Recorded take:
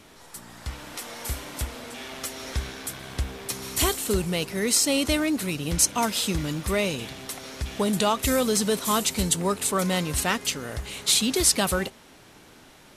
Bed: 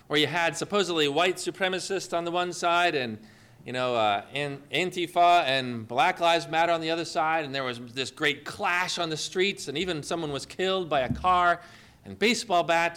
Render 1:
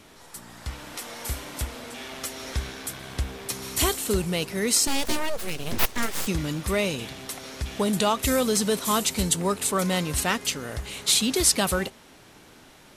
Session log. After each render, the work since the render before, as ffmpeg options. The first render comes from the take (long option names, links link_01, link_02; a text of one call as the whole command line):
ffmpeg -i in.wav -filter_complex "[0:a]asettb=1/sr,asplit=3[link_01][link_02][link_03];[link_01]atrim=end=4.874[link_04];[link_02]atrim=start=4.87:end=6.27,asetpts=PTS-STARTPTS,afade=type=in:duration=0.004:curve=qsin,afade=type=out:start_time=1.396:duration=0.004:curve=qsin,aeval=exprs='abs(val(0))':channel_layout=same[link_05];[link_03]atrim=start=6.266[link_06];[link_04][link_05]acrossfade=duration=0.004:curve1=hsin:curve2=qsin[link_07];[link_07][link_06]acrossfade=duration=0.004:curve1=qsin:curve2=hsin" out.wav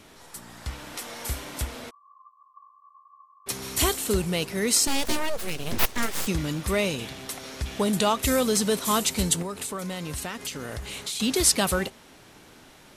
ffmpeg -i in.wav -filter_complex "[0:a]asplit=3[link_01][link_02][link_03];[link_01]afade=type=out:start_time=1.89:duration=0.02[link_04];[link_02]asuperpass=centerf=1100:order=20:qfactor=7.7,afade=type=in:start_time=1.89:duration=0.02,afade=type=out:start_time=3.46:duration=0.02[link_05];[link_03]afade=type=in:start_time=3.46:duration=0.02[link_06];[link_04][link_05][link_06]amix=inputs=3:normalize=0,asettb=1/sr,asplit=3[link_07][link_08][link_09];[link_07]atrim=end=9.424[link_10];[link_08]atrim=start=9.42:end=11.2,asetpts=PTS-STARTPTS,afade=type=in:duration=0.004:curve=qsin,afade=type=out:start_time=1.776:duration=0.004:curve=qsin,acompressor=threshold=-29dB:ratio=6:attack=3.2:release=140:knee=1:detection=peak[link_11];[link_09]atrim=start=11.196[link_12];[link_10][link_11]acrossfade=duration=0.004:curve1=hsin:curve2=qsin[link_13];[link_13][link_12]acrossfade=duration=0.004:curve1=qsin:curve2=hsin" out.wav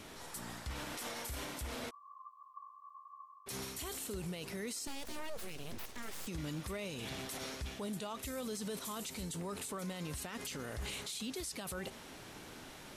ffmpeg -i in.wav -af "areverse,acompressor=threshold=-34dB:ratio=4,areverse,alimiter=level_in=9dB:limit=-24dB:level=0:latency=1:release=49,volume=-9dB" out.wav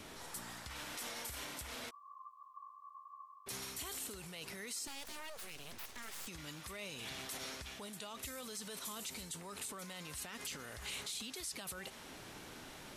ffmpeg -i in.wav -filter_complex "[0:a]acrossover=split=760|1700[link_01][link_02][link_03];[link_01]acompressor=threshold=-51dB:ratio=5[link_04];[link_02]alimiter=level_in=23dB:limit=-24dB:level=0:latency=1,volume=-23dB[link_05];[link_04][link_05][link_03]amix=inputs=3:normalize=0" out.wav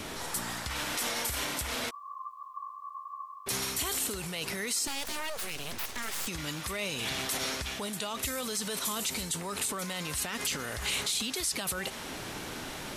ffmpeg -i in.wav -af "volume=12dB" out.wav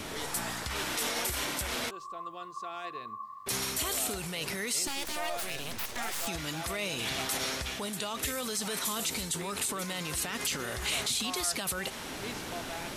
ffmpeg -i in.wav -i bed.wav -filter_complex "[1:a]volume=-19dB[link_01];[0:a][link_01]amix=inputs=2:normalize=0" out.wav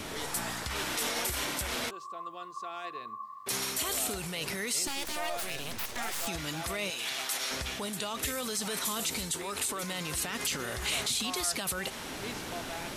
ffmpeg -i in.wav -filter_complex "[0:a]asettb=1/sr,asplit=3[link_01][link_02][link_03];[link_01]atrim=end=1.934[link_04];[link_02]atrim=start=1.93:end=3.89,asetpts=PTS-STARTPTS,afade=type=in:duration=0.004:curve=qsin,afade=type=out:start_time=1.956:duration=0.004:curve=qsin,highpass=frequency=170:poles=1[link_05];[link_03]atrim=start=3.886[link_06];[link_04][link_05]acrossfade=duration=0.004:curve1=hsin:curve2=qsin[link_07];[link_07][link_06]acrossfade=duration=0.004:curve1=qsin:curve2=hsin,asettb=1/sr,asplit=3[link_08][link_09][link_10];[link_08]atrim=end=6.904[link_11];[link_09]atrim=start=6.9:end=7.51,asetpts=PTS-STARTPTS,afade=type=in:duration=0.004:curve=qsin,afade=type=out:start_time=0.606:duration=0.004:curve=qsin,highpass=frequency=1000:poles=1[link_12];[link_10]atrim=start=7.506[link_13];[link_11][link_12]acrossfade=duration=0.004:curve1=hsin:curve2=qsin[link_14];[link_14][link_13]acrossfade=duration=0.004:curve1=qsin:curve2=hsin,asettb=1/sr,asplit=3[link_15][link_16][link_17];[link_15]atrim=end=9.324[link_18];[link_16]atrim=start=9.32:end=9.83,asetpts=PTS-STARTPTS,afade=type=in:duration=0.004:curve=qsin,afade=type=out:start_time=0.506:duration=0.004:curve=qsin,equalizer=frequency=170:width_type=o:width=0.46:gain=-10.5[link_19];[link_17]atrim=start=9.826[link_20];[link_18][link_19]acrossfade=duration=0.004:curve1=hsin:curve2=qsin[link_21];[link_21][link_20]acrossfade=duration=0.004:curve1=qsin:curve2=hsin" out.wav